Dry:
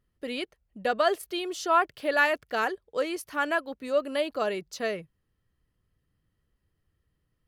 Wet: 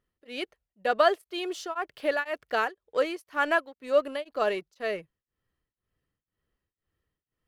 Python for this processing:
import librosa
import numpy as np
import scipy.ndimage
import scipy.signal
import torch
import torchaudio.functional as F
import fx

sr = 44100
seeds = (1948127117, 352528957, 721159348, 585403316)

p1 = fx.bass_treble(x, sr, bass_db=-8, treble_db=-5)
p2 = np.sign(p1) * np.maximum(np.abs(p1) - 10.0 ** (-42.0 / 20.0), 0.0)
p3 = p1 + (p2 * 10.0 ** (-5.5 / 20.0))
y = p3 * np.abs(np.cos(np.pi * 2.0 * np.arange(len(p3)) / sr))